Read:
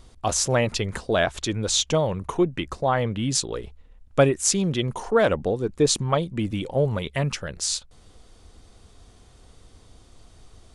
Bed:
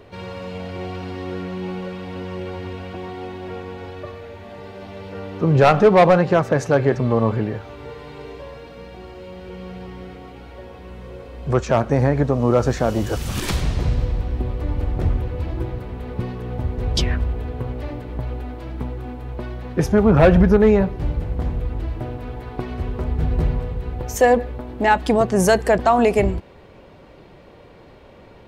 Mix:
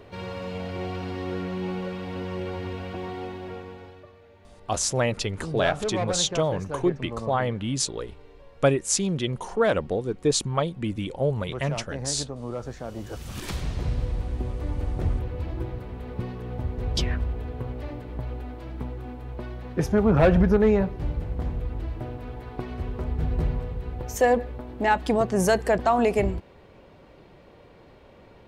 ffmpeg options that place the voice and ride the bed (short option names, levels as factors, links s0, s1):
-filter_complex "[0:a]adelay=4450,volume=0.75[s0];[1:a]volume=2.82,afade=t=out:st=3.15:d=0.92:silence=0.188365,afade=t=in:st=12.83:d=1.35:silence=0.281838[s1];[s0][s1]amix=inputs=2:normalize=0"